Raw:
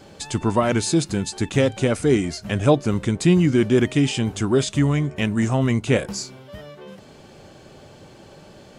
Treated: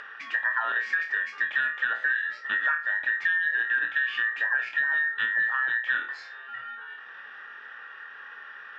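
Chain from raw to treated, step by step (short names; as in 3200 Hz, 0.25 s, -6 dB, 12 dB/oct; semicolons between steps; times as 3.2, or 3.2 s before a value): band inversion scrambler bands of 2000 Hz; LPF 2800 Hz 24 dB/oct; on a send: flutter echo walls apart 4.3 m, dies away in 0.25 s; on the sum: compressor 6:1, threshold -21 dBFS, peak gain reduction 11.5 dB; HPF 1300 Hz 6 dB/oct; upward compressor, threshold -37 dBFS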